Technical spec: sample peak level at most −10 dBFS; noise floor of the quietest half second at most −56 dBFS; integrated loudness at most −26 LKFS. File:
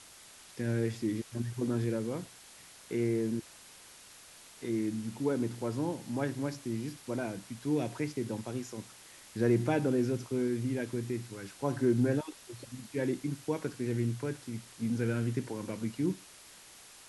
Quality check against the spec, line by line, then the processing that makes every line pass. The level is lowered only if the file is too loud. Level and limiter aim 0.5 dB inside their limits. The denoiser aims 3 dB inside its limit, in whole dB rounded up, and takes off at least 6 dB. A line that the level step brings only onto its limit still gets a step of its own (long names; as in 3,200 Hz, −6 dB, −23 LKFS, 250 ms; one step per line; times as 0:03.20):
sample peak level −16.5 dBFS: in spec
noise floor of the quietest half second −54 dBFS: out of spec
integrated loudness −34.0 LKFS: in spec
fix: broadband denoise 6 dB, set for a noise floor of −54 dBFS